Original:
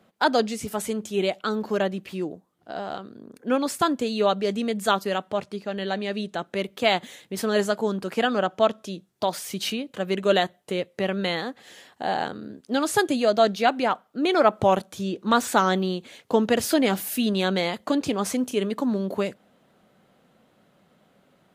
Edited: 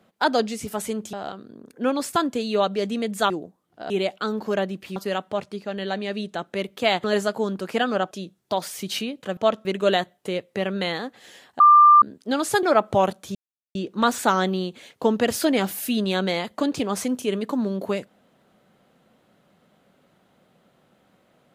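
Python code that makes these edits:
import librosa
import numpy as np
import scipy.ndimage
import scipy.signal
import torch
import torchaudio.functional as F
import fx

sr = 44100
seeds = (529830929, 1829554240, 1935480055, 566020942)

y = fx.edit(x, sr, fx.swap(start_s=1.13, length_s=1.06, other_s=2.79, other_length_s=2.17),
    fx.cut(start_s=7.04, length_s=0.43),
    fx.move(start_s=8.54, length_s=0.28, to_s=10.08),
    fx.bleep(start_s=12.03, length_s=0.42, hz=1190.0, db=-8.5),
    fx.cut(start_s=13.06, length_s=1.26),
    fx.insert_silence(at_s=15.04, length_s=0.4), tone=tone)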